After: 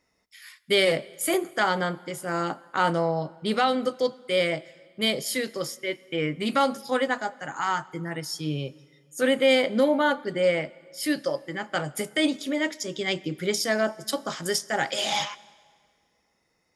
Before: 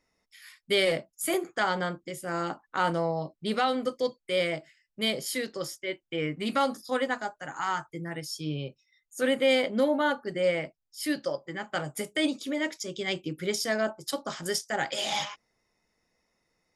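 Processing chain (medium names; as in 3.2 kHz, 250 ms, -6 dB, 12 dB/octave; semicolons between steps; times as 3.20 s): high-pass 41 Hz; on a send: reverberation RT60 1.9 s, pre-delay 68 ms, DRR 22 dB; on the sum: trim +3.5 dB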